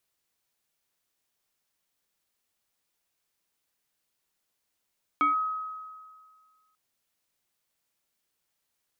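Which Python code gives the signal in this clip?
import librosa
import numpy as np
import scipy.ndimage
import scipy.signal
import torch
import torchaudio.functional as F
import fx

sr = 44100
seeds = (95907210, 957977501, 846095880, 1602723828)

y = fx.fm2(sr, length_s=1.54, level_db=-19.0, carrier_hz=1270.0, ratio=0.77, index=0.59, index_s=0.14, decay_s=1.82, shape='linear')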